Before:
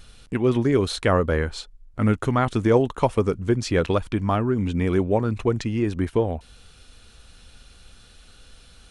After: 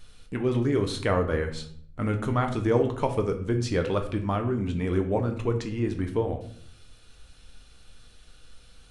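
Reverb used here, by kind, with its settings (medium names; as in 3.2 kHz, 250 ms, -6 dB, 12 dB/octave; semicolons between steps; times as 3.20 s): simulated room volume 86 m³, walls mixed, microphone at 0.45 m; trim -6 dB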